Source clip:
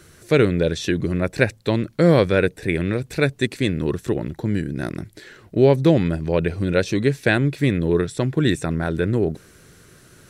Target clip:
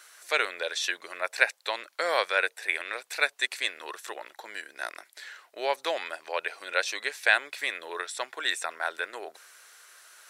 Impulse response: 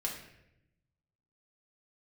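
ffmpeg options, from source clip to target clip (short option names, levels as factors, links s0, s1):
-af "highpass=f=750:w=0.5412,highpass=f=750:w=1.3066"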